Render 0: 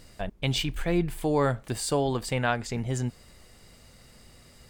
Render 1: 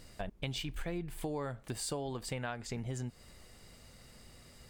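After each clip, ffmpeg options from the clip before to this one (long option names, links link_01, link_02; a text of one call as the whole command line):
ffmpeg -i in.wav -af "acompressor=threshold=-32dB:ratio=6,volume=-3dB" out.wav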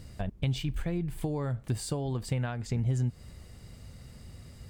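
ffmpeg -i in.wav -af "equalizer=frequency=89:width_type=o:width=2.7:gain=14" out.wav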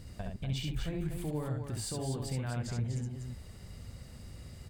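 ffmpeg -i in.wav -filter_complex "[0:a]alimiter=level_in=3dB:limit=-24dB:level=0:latency=1:release=61,volume=-3dB,asplit=2[link_01][link_02];[link_02]aecho=0:1:67.06|244.9:0.708|0.501[link_03];[link_01][link_03]amix=inputs=2:normalize=0,volume=-2dB" out.wav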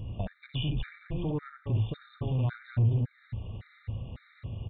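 ffmpeg -i in.wav -af "aresample=8000,asoftclip=type=tanh:threshold=-33.5dB,aresample=44100,equalizer=frequency=110:width_type=o:width=0.23:gain=11,afftfilt=real='re*gt(sin(2*PI*1.8*pts/sr)*(1-2*mod(floor(b*sr/1024/1200),2)),0)':imag='im*gt(sin(2*PI*1.8*pts/sr)*(1-2*mod(floor(b*sr/1024/1200),2)),0)':win_size=1024:overlap=0.75,volume=8dB" out.wav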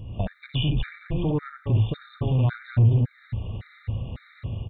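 ffmpeg -i in.wav -af "dynaudnorm=framelen=100:gausssize=3:maxgain=7dB" out.wav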